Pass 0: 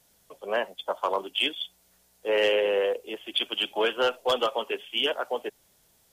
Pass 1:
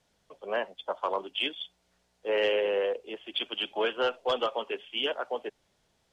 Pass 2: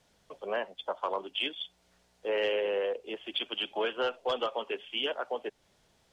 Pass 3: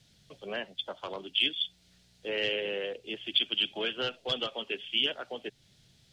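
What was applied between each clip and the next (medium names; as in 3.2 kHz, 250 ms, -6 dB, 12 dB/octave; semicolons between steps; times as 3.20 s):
Bessel low-pass 4.1 kHz, order 2; trim -3 dB
compression 1.5:1, threshold -43 dBFS, peak gain reduction 7.5 dB; trim +4 dB
graphic EQ 125/500/1000/4000 Hz +11/-6/-12/+7 dB; trim +2.5 dB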